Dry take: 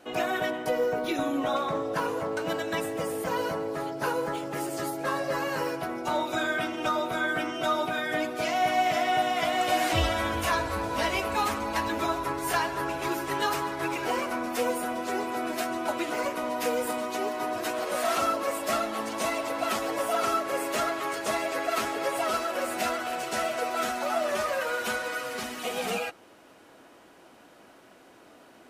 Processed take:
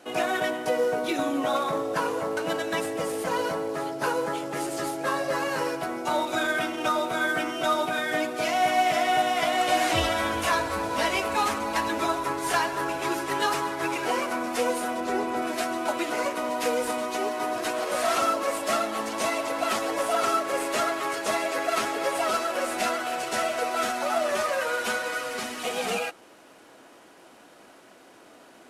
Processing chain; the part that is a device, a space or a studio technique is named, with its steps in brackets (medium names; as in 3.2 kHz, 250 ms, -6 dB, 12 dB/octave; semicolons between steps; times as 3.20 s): early wireless headset (high-pass 160 Hz 6 dB/octave; CVSD coder 64 kbps); 15.00–15.42 s: tilt EQ -1.5 dB/octave; trim +2.5 dB